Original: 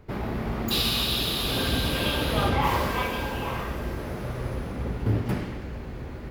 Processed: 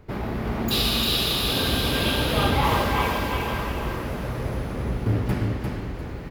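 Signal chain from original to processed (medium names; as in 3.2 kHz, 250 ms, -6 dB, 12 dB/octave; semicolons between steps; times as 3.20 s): feedback delay 349 ms, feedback 29%, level -4 dB; trim +1.5 dB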